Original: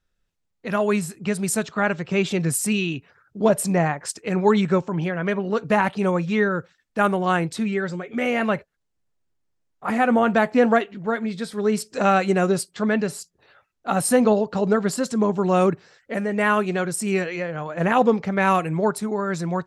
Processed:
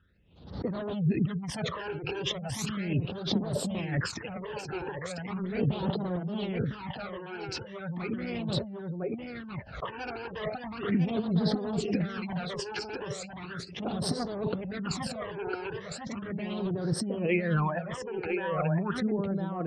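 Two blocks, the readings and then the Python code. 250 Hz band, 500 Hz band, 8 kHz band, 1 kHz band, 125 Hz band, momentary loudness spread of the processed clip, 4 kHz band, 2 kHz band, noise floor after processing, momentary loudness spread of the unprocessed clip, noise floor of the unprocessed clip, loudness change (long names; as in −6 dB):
−9.0 dB, −12.0 dB, −13.5 dB, −14.5 dB, −4.0 dB, 10 LU, −2.0 dB, −12.5 dB, −44 dBFS, 9 LU, −75 dBFS, −10.5 dB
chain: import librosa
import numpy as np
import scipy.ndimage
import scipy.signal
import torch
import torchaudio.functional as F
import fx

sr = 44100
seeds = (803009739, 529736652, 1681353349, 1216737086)

p1 = fx.fade_out_tail(x, sr, length_s=3.96)
p2 = fx.fold_sine(p1, sr, drive_db=19, ceiling_db=-5.0)
p3 = p1 + (p2 * librosa.db_to_amplitude(-9.0))
p4 = scipy.signal.sosfilt(scipy.signal.butter(4, 53.0, 'highpass', fs=sr, output='sos'), p3)
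p5 = fx.air_absorb(p4, sr, metres=220.0)
p6 = fx.over_compress(p5, sr, threshold_db=-21.0, ratio=-0.5)
p7 = fx.peak_eq(p6, sr, hz=1400.0, db=-2.5, octaves=2.6)
p8 = fx.spec_gate(p7, sr, threshold_db=-30, keep='strong')
p9 = p8 + fx.echo_single(p8, sr, ms=1005, db=-4.5, dry=0)
p10 = fx.phaser_stages(p9, sr, stages=12, low_hz=190.0, high_hz=2500.0, hz=0.37, feedback_pct=25)
p11 = fx.pre_swell(p10, sr, db_per_s=95.0)
y = p11 * librosa.db_to_amplitude(-7.5)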